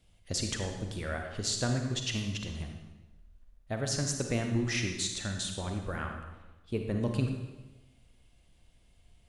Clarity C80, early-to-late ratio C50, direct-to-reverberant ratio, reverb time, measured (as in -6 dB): 6.5 dB, 4.5 dB, 3.5 dB, 1.1 s